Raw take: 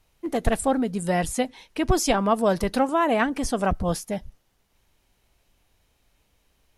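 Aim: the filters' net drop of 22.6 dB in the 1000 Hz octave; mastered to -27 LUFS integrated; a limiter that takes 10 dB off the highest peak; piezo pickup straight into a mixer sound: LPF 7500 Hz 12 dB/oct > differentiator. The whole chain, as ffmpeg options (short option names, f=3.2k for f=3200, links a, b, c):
-af "equalizer=f=1k:t=o:g=-6.5,alimiter=limit=-17.5dB:level=0:latency=1,lowpass=7.5k,aderivative,volume=13.5dB"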